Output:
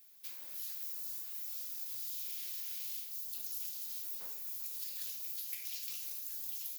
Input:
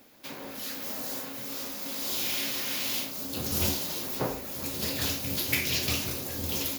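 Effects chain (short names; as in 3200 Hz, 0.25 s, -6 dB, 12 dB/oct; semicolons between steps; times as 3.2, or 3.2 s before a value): pre-emphasis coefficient 0.97; compressor, threshold -34 dBFS, peak gain reduction 12 dB; gain -4.5 dB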